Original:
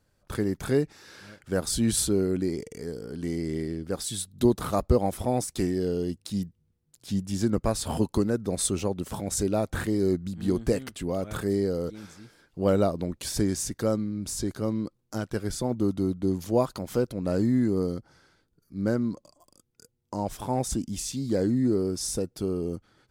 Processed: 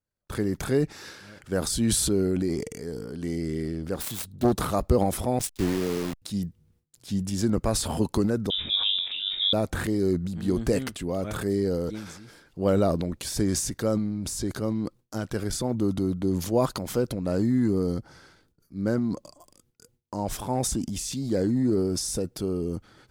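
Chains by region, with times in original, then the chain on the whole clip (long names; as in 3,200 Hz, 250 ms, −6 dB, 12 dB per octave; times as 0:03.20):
0:03.94–0:04.53: phase distortion by the signal itself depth 0.55 ms + one half of a high-frequency compander decoder only
0:05.39–0:06.22: hold until the input has moved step −30 dBFS + noise gate −33 dBFS, range −20 dB + multiband upward and downward expander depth 100%
0:08.50–0:09.53: high-frequency loss of the air 440 metres + flutter between parallel walls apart 3.6 metres, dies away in 0.24 s + voice inversion scrambler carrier 3,700 Hz
whole clip: transient designer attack 0 dB, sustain +8 dB; noise gate with hold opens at −54 dBFS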